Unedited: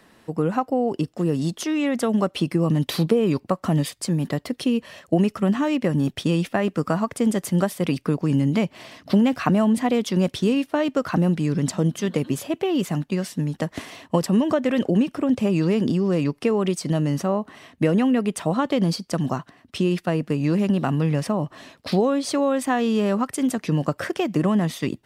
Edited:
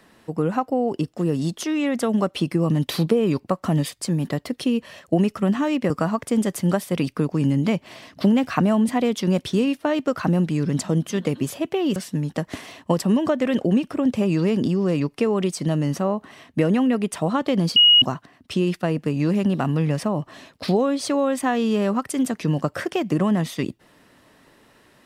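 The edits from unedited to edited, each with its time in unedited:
5.90–6.79 s: delete
12.85–13.20 s: delete
19.00–19.26 s: bleep 2.89 kHz -9.5 dBFS

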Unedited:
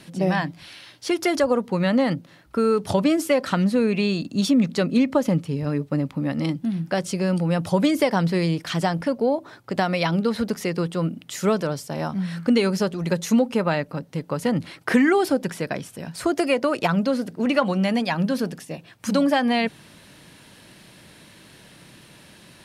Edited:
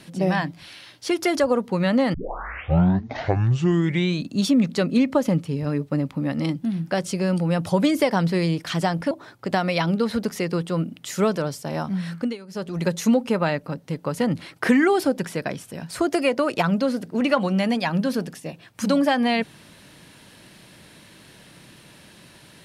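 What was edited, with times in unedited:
2.14 s: tape start 2.17 s
9.11–9.36 s: delete
12.34–13.02 s: dip -20.5 dB, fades 0.29 s

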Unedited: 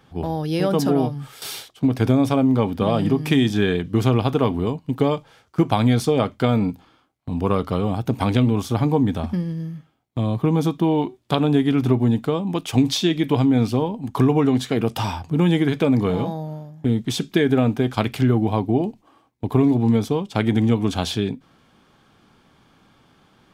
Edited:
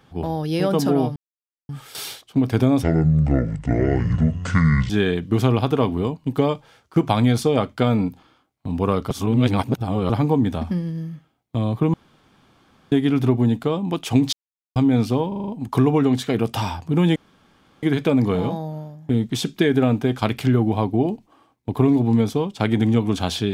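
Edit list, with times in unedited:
1.16 s: insert silence 0.53 s
2.30–3.52 s: speed 59%
7.73–8.72 s: reverse
10.56–11.54 s: room tone
12.95–13.38 s: mute
13.90 s: stutter 0.04 s, 6 plays
15.58 s: insert room tone 0.67 s

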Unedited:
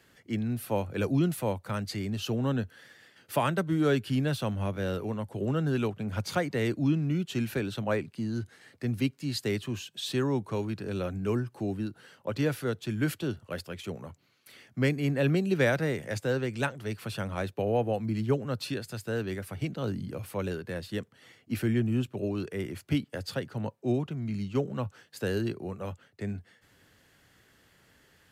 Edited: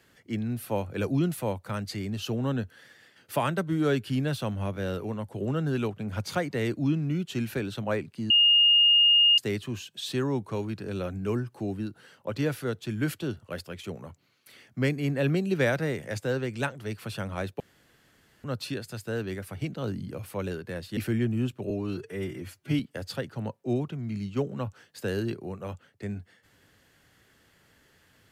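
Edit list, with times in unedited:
8.30–9.38 s: bleep 2.84 kHz -16 dBFS
17.60–18.44 s: room tone
20.97–21.52 s: delete
22.25–22.98 s: stretch 1.5×

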